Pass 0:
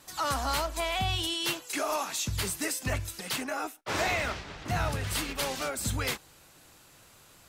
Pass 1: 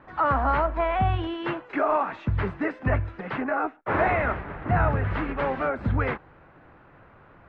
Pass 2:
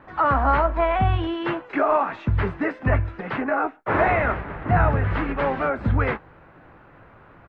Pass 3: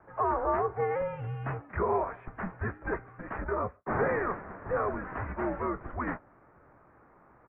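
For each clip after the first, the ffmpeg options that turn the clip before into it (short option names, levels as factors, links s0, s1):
-af "lowpass=f=1800:w=0.5412,lowpass=f=1800:w=1.3066,volume=2.51"
-filter_complex "[0:a]asplit=2[s0][s1];[s1]adelay=18,volume=0.224[s2];[s0][s2]amix=inputs=2:normalize=0,volume=1.41"
-af "highpass=f=250:t=q:w=0.5412,highpass=f=250:t=q:w=1.307,lowpass=f=2300:t=q:w=0.5176,lowpass=f=2300:t=q:w=0.7071,lowpass=f=2300:t=q:w=1.932,afreqshift=-210,volume=0.398"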